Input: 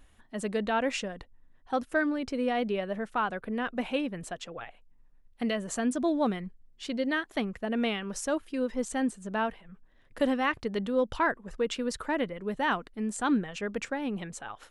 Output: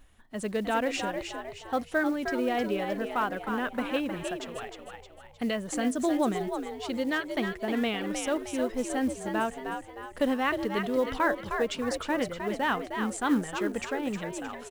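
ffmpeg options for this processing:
-filter_complex "[0:a]asplit=6[s0][s1][s2][s3][s4][s5];[s1]adelay=310,afreqshift=67,volume=0.473[s6];[s2]adelay=620,afreqshift=134,volume=0.214[s7];[s3]adelay=930,afreqshift=201,volume=0.0955[s8];[s4]adelay=1240,afreqshift=268,volume=0.0432[s9];[s5]adelay=1550,afreqshift=335,volume=0.0195[s10];[s0][s6][s7][s8][s9][s10]amix=inputs=6:normalize=0,acrusher=bits=7:mode=log:mix=0:aa=0.000001"

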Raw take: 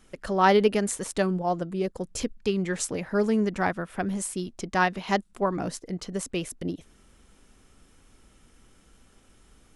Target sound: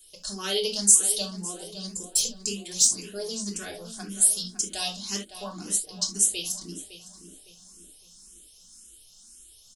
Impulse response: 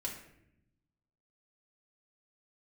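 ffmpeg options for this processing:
-filter_complex "[0:a]asettb=1/sr,asplit=3[s0][s1][s2];[s0]atrim=end=1.894[s3];[s1]atrim=start=1.89:end=2.64,asetpts=PTS-STARTPTS,afade=t=in:d=0.004:c=qsin,afade=t=out:st=0.746:d=0.004:c=qsin,equalizer=f=7400:t=o:w=0.37:g=11[s4];[s2]atrim=start=2.636[s5];[s3][s4]acrossfade=d=0.004:c1=hsin:c2=qsin[s6];[s6][s5]acrossfade=d=0.004:c1=qsin:c2=hsin,asplit=2[s7][s8];[s8]adelay=559,lowpass=f=3000:p=1,volume=0.282,asplit=2[s9][s10];[s10]adelay=559,lowpass=f=3000:p=1,volume=0.44,asplit=2[s11][s12];[s12]adelay=559,lowpass=f=3000:p=1,volume=0.44,asplit=2[s13][s14];[s14]adelay=559,lowpass=f=3000:p=1,volume=0.44,asplit=2[s15][s16];[s16]adelay=559,lowpass=f=3000:p=1,volume=0.44[s17];[s7][s9][s11][s13][s15][s17]amix=inputs=6:normalize=0[s18];[1:a]atrim=start_sample=2205,afade=t=out:st=0.14:d=0.01,atrim=end_sample=6615,asetrate=48510,aresample=44100[s19];[s18][s19]afir=irnorm=-1:irlink=0,aexciter=amount=13.4:drive=7.8:freq=3200,asplit=2[s20][s21];[s21]afreqshift=1.9[s22];[s20][s22]amix=inputs=2:normalize=1,volume=0.376"

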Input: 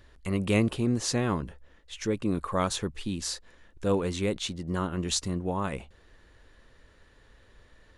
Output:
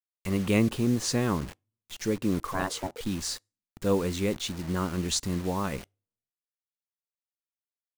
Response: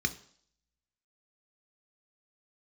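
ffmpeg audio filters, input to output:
-filter_complex "[0:a]acrusher=bits=6:mix=0:aa=0.000001,asplit=2[s0][s1];[1:a]atrim=start_sample=2205,asetrate=79380,aresample=44100[s2];[s1][s2]afir=irnorm=-1:irlink=0,volume=0.0891[s3];[s0][s3]amix=inputs=2:normalize=0,asettb=1/sr,asplit=3[s4][s5][s6];[s4]atrim=end=2.534[s7];[s5]atrim=start=2.53:end=3.01,asetpts=PTS-STARTPTS,afade=t=in:d=0.004:c=qsin,afade=t=out:st=0.476:d=0.004:c=qsin,aeval=exprs='val(0)*sin(2*PI*470*n/s)':c=same[s8];[s6]atrim=start=3.006[s9];[s7][s8]acrossfade=d=0.004:c1=hsin:c2=qsin[s10];[s10][s9]acrossfade=d=0.004:c1=qsin:c2=hsin"

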